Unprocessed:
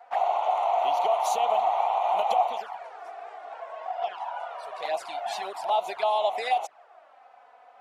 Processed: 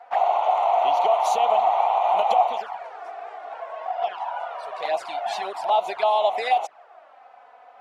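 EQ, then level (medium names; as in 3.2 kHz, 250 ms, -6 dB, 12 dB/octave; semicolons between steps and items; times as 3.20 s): treble shelf 7.7 kHz -10 dB; +4.5 dB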